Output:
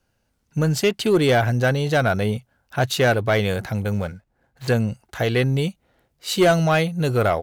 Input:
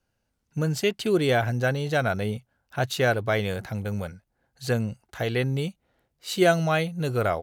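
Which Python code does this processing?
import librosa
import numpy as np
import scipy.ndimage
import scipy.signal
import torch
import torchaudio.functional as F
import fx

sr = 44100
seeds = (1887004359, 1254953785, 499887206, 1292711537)

y = fx.median_filter(x, sr, points=9, at=(3.93, 4.68))
y = 10.0 ** (-16.0 / 20.0) * np.tanh(y / 10.0 ** (-16.0 / 20.0))
y = y * librosa.db_to_amplitude(6.5)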